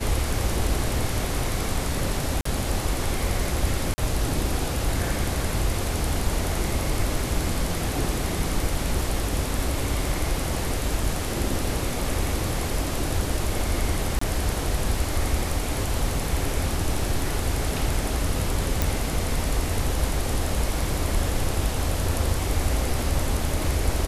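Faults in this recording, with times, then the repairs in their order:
0:02.41–0:02.45: drop-out 44 ms
0:03.94–0:03.98: drop-out 40 ms
0:14.19–0:14.21: drop-out 24 ms
0:18.82: click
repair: click removal
repair the gap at 0:02.41, 44 ms
repair the gap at 0:03.94, 40 ms
repair the gap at 0:14.19, 24 ms

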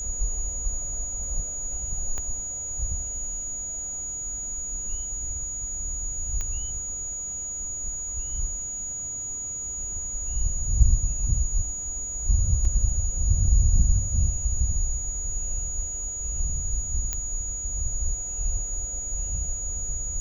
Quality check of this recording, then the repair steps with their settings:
whistle 6,800 Hz −30 dBFS
0:02.18: click −19 dBFS
0:06.41: click −17 dBFS
0:12.65: drop-out 2.7 ms
0:17.13: click −12 dBFS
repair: click removal
notch filter 6,800 Hz, Q 30
repair the gap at 0:12.65, 2.7 ms

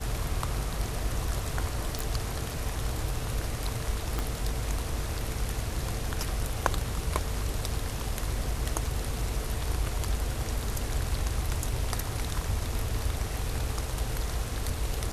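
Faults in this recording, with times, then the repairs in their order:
0:01.99: click
0:04.19: click −15 dBFS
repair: click removal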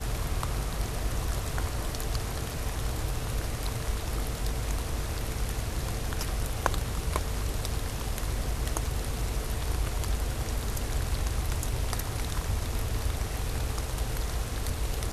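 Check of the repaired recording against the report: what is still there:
0:04.19: click

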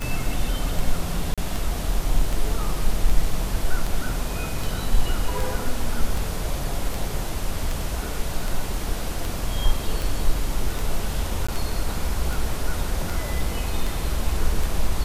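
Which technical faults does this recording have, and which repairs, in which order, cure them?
scratch tick 78 rpm
0:01.34–0:01.38: drop-out 36 ms
0:11.47–0:11.48: drop-out 15 ms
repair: click removal
repair the gap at 0:01.34, 36 ms
repair the gap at 0:11.47, 15 ms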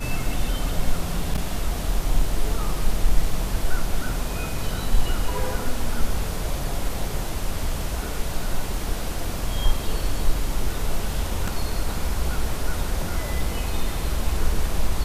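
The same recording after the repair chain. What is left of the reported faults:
none of them is left

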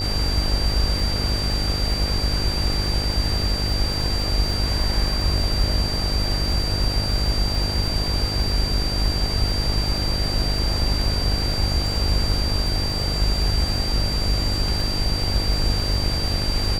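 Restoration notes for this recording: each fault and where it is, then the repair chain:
mains buzz 50 Hz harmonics 17 −26 dBFS
surface crackle 54 per second −29 dBFS
whistle 4,700 Hz −26 dBFS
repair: click removal
notch filter 4,700 Hz, Q 30
hum removal 50 Hz, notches 17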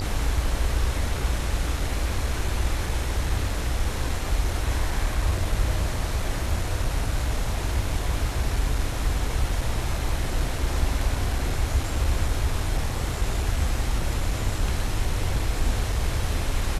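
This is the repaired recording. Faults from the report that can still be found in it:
none of them is left

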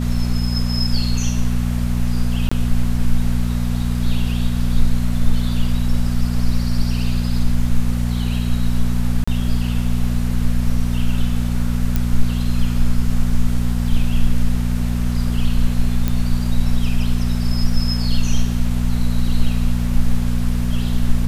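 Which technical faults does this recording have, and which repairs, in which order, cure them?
mains hum 60 Hz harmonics 4 −20 dBFS
0:02.49–0:02.52: drop-out 25 ms
0:09.24–0:09.28: drop-out 35 ms
0:11.96: click −6 dBFS
0:16.08: click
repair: click removal
hum removal 60 Hz, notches 4
repair the gap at 0:02.49, 25 ms
repair the gap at 0:09.24, 35 ms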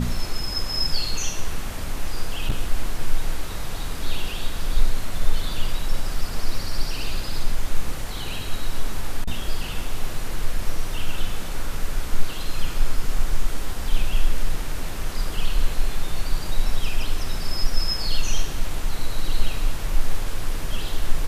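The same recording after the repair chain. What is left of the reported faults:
none of them is left

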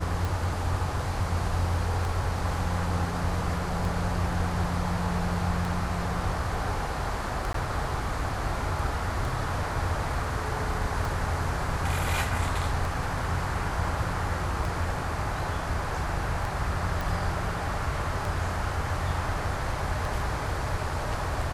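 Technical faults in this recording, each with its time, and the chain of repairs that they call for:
scratch tick 33 1/3 rpm
0:07.53–0:07.54: drop-out 13 ms
0:17.01: click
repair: click removal
repair the gap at 0:07.53, 13 ms

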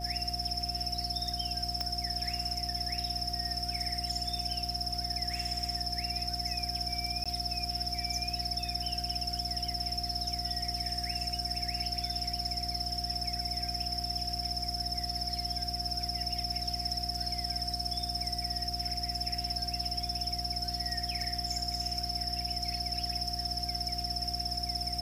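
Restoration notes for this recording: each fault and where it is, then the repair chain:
mains hum 60 Hz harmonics 6 −40 dBFS
whistle 710 Hz −40 dBFS
0:01.81: click −18 dBFS
0:07.24–0:07.26: drop-out 16 ms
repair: click removal
hum removal 60 Hz, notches 6
notch filter 710 Hz, Q 30
repair the gap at 0:07.24, 16 ms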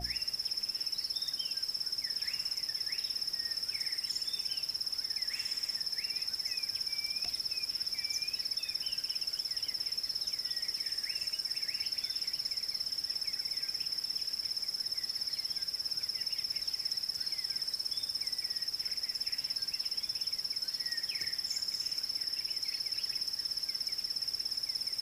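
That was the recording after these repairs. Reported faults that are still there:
none of them is left

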